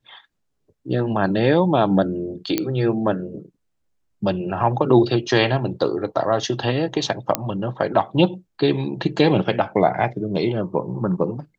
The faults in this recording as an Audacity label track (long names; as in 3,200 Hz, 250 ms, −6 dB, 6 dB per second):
2.580000	2.580000	click −6 dBFS
7.350000	7.350000	click −2 dBFS